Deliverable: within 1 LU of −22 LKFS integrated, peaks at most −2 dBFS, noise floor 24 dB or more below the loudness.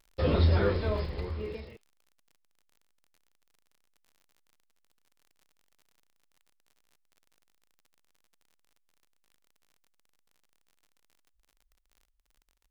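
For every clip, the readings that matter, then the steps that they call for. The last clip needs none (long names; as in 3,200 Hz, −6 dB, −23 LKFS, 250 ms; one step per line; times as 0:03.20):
crackle rate 49 per second; integrated loudness −28.5 LKFS; sample peak −13.5 dBFS; target loudness −22.0 LKFS
→ click removal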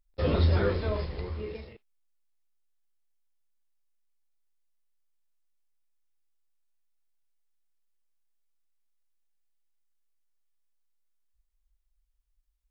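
crackle rate 0 per second; integrated loudness −28.5 LKFS; sample peak −13.5 dBFS; target loudness −22.0 LKFS
→ level +6.5 dB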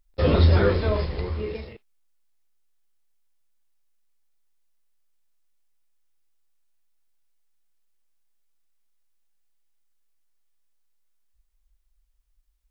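integrated loudness −22.0 LKFS; sample peak −7.0 dBFS; background noise floor −68 dBFS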